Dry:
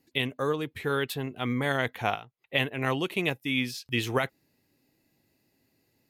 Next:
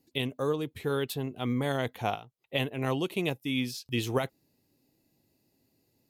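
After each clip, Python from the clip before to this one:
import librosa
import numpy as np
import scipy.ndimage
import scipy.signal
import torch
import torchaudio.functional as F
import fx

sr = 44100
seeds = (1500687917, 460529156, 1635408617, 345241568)

y = fx.peak_eq(x, sr, hz=1800.0, db=-9.0, octaves=1.3)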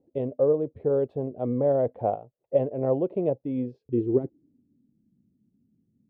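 y = fx.filter_sweep_lowpass(x, sr, from_hz=570.0, to_hz=210.0, start_s=3.49, end_s=4.9, q=4.5)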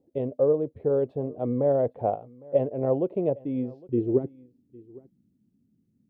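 y = x + 10.0 ** (-23.0 / 20.0) * np.pad(x, (int(808 * sr / 1000.0), 0))[:len(x)]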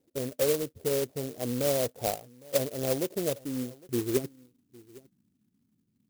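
y = fx.clock_jitter(x, sr, seeds[0], jitter_ms=0.13)
y = y * 10.0 ** (-4.5 / 20.0)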